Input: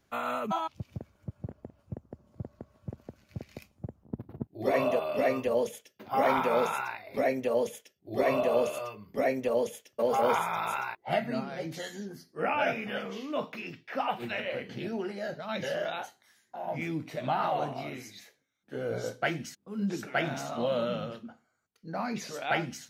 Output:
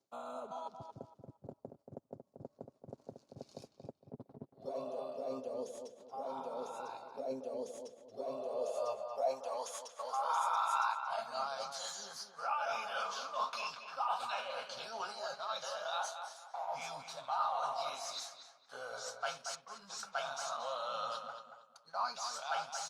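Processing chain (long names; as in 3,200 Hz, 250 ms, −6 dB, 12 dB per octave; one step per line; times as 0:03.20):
flat-topped bell 6,200 Hz +13 dB
phaser with its sweep stopped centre 800 Hz, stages 4
reversed playback
downward compressor 8 to 1, threshold −41 dBFS, peak gain reduction 18 dB
reversed playback
spectral tilt +3 dB per octave
comb filter 7.4 ms, depth 33%
leveller curve on the samples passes 2
on a send: feedback echo with a low-pass in the loop 230 ms, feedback 32%, low-pass 3,000 Hz, level −7 dB
on the sum: band-pass filter sweep 330 Hz → 1,200 Hz, 0:08.33–0:09.79
level +6.5 dB
Opus 64 kbit/s 48,000 Hz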